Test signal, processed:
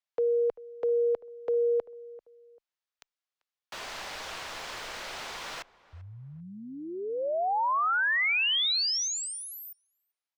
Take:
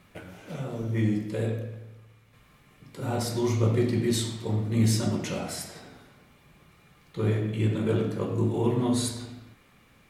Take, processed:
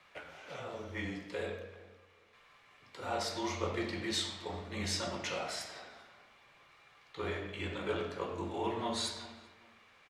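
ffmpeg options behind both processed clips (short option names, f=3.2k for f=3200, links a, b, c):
-filter_complex "[0:a]acrossover=split=530 6400:gain=0.112 1 0.126[a][b][c];[a][b][c]amix=inputs=3:normalize=0,asplit=2[d][e];[e]adelay=391,lowpass=f=1.5k:p=1,volume=-19dB,asplit=2[f][g];[g]adelay=391,lowpass=f=1.5k:p=1,volume=0.29[h];[d][f][h]amix=inputs=3:normalize=0,afreqshift=-20"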